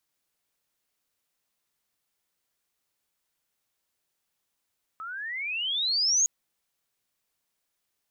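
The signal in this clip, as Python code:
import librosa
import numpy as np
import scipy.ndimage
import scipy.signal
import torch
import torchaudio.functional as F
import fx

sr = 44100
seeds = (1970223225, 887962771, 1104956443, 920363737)

y = fx.riser_tone(sr, length_s=1.26, level_db=-19.0, wave='sine', hz=1270.0, rise_st=29.0, swell_db=16.0)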